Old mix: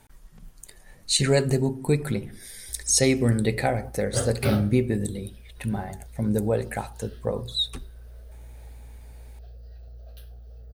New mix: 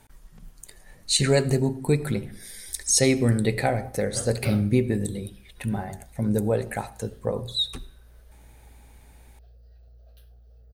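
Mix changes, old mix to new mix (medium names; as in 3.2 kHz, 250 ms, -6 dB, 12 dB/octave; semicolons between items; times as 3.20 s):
background -8.0 dB; reverb: on, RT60 0.65 s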